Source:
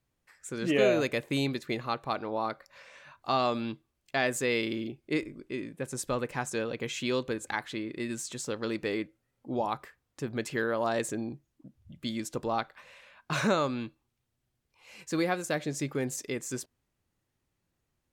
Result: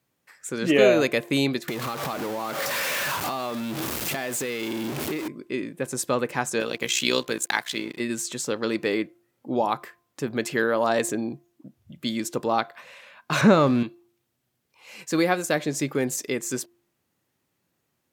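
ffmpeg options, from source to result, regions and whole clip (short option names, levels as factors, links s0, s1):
-filter_complex "[0:a]asettb=1/sr,asplit=3[s0][s1][s2];[s0]atrim=end=1.684[s3];[s1]atrim=start=1.68:end=5.28,asetpts=PTS-STARTPTS,afade=t=in:d=0.004:c=qsin,afade=t=out:st=3.596:d=0.004:c=qsin,aeval=exprs='val(0)+0.5*0.0355*sgn(val(0))':c=same,acompressor=threshold=0.0224:ratio=10:attack=3.2:release=140:knee=1:detection=peak[s4];[s2]atrim=start=5.276[s5];[s3][s4]acrossfade=d=0.004:c1=hsin:c2=qsin[s6];[s6][s5]acrossfade=d=0.004:c1=qsin:c2=hsin,asettb=1/sr,asplit=3[s7][s8][s9];[s7]atrim=end=6.604[s10];[s8]atrim=start=6.6:end=8,asetpts=PTS-STARTPTS,afade=t=in:d=0.004:c=qsin,afade=t=out:st=1.396:d=0.004:c=qsin,highshelf=f=2300:g=12,tremolo=f=62:d=0.667,aeval=exprs='sgn(val(0))*max(abs(val(0))-0.00178,0)':c=same[s11];[s9]atrim=start=7.996[s12];[s10][s11]acrossfade=d=0.004:c1=hsin:c2=qsin[s13];[s13][s12]acrossfade=d=0.004:c1=qsin:c2=hsin,asettb=1/sr,asplit=3[s14][s15][s16];[s14]atrim=end=13.414[s17];[s15]atrim=start=13.41:end=13.83,asetpts=PTS-STARTPTS,afade=t=in:d=0.004:c=qsin,afade=t=out:st=0.416:d=0.004:c=qsin,aeval=exprs='val(0)+0.5*0.0112*sgn(val(0))':c=same,aemphasis=mode=reproduction:type=bsi[s18];[s16]atrim=start=13.826[s19];[s17][s18]acrossfade=d=0.004:c1=hsin:c2=qsin[s20];[s20][s19]acrossfade=d=0.004:c1=qsin:c2=hsin,highpass=150,equalizer=f=14000:t=o:w=0.32:g=6.5,bandreject=f=347:t=h:w=4,bandreject=f=694:t=h:w=4,bandreject=f=1041:t=h:w=4,volume=2.24"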